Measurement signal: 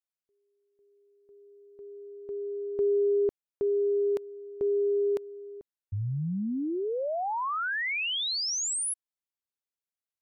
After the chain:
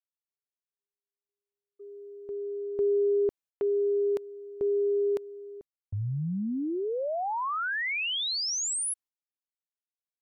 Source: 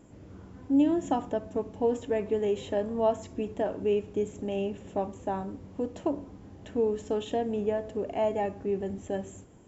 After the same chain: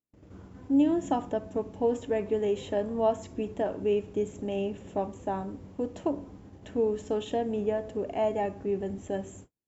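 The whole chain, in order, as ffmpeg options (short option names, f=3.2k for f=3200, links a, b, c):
-af "agate=range=-42dB:threshold=-47dB:ratio=16:release=318:detection=peak"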